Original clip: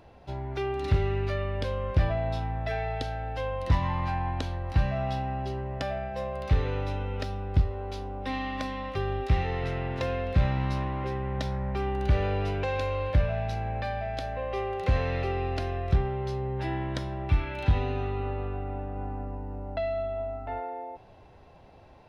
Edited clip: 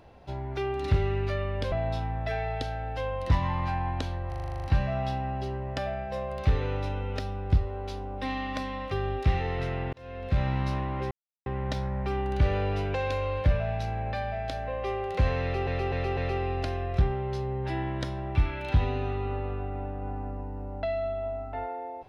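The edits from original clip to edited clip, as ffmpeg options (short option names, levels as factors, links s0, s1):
-filter_complex "[0:a]asplit=16[s0][s1][s2][s3][s4][s5][s6][s7][s8][s9][s10][s11][s12][s13][s14][s15];[s0]atrim=end=1.722[s16];[s1]atrim=start=2.118:end=4.722[s17];[s2]atrim=start=4.678:end=4.722[s18];[s3]atrim=start=4.678:end=4.722[s19];[s4]atrim=start=4.678:end=4.722[s20];[s5]atrim=start=4.678:end=4.722[s21];[s6]atrim=start=4.678:end=4.722[s22];[s7]atrim=start=4.678:end=4.722[s23];[s8]atrim=start=4.678:end=4.722[s24];[s9]atrim=start=4.678:end=4.722[s25];[s10]atrim=start=4.678:end=9.97,asetpts=PTS-STARTPTS,afade=t=out:st=5.288:d=0.004:c=hsin[s26];[s11]atrim=start=9.97:end=11.15,asetpts=PTS-STARTPTS,afade=t=in:d=0.57,afade=t=out:st=1.176:d=0.004:c=hsin,apad=pad_dur=0.35[s27];[s12]atrim=start=11.15:end=15.362,asetpts=PTS-STARTPTS,afade=t=in:d=0.004:c=hsin[s28];[s13]atrim=start=15.108:end=15.362[s29];[s14]atrim=start=15.108:end=15.362[s30];[s15]atrim=start=15.108[s31];[s16][s17]acrossfade=d=0.004:c1=hsin:c2=hsin[s32];[s32][s18]acrossfade=d=0.004:c1=hsin:c2=hsin[s33];[s33][s19]acrossfade=d=0.004:c1=hsin:c2=hsin[s34];[s34][s20]acrossfade=d=0.004:c1=hsin:c2=hsin[s35];[s35][s21]acrossfade=d=0.004:c1=hsin:c2=hsin[s36];[s36][s22]acrossfade=d=0.004:c1=hsin:c2=hsin[s37];[s37][s23]acrossfade=d=0.004:c1=hsin:c2=hsin[s38];[s38][s24]acrossfade=d=0.004:c1=hsin:c2=hsin[s39];[s39][s25]acrossfade=d=0.004:c1=hsin:c2=hsin[s40];[s26][s27][s28]concat=n=3:v=0:a=1[s41];[s40][s41]acrossfade=d=0.004:c1=hsin:c2=hsin[s42];[s42][s29]acrossfade=d=0.004:c1=hsin:c2=hsin[s43];[s43][s30]acrossfade=d=0.004:c1=hsin:c2=hsin[s44];[s44][s31]acrossfade=d=0.004:c1=hsin:c2=hsin"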